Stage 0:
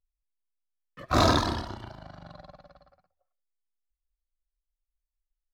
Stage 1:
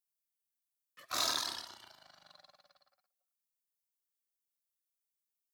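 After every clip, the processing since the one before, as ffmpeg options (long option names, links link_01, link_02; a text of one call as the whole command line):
ffmpeg -i in.wav -filter_complex "[0:a]aderivative,asplit=2[link_01][link_02];[link_02]alimiter=level_in=5.5dB:limit=-24dB:level=0:latency=1:release=16,volume=-5.5dB,volume=-0.5dB[link_03];[link_01][link_03]amix=inputs=2:normalize=0,volume=-2dB" out.wav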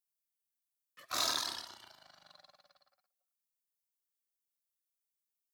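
ffmpeg -i in.wav -af anull out.wav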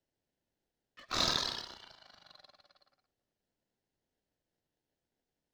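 ffmpeg -i in.wav -filter_complex "[0:a]acrossover=split=5100[link_01][link_02];[link_01]crystalizer=i=2.5:c=0[link_03];[link_02]acrusher=samples=37:mix=1:aa=0.000001[link_04];[link_03][link_04]amix=inputs=2:normalize=0" out.wav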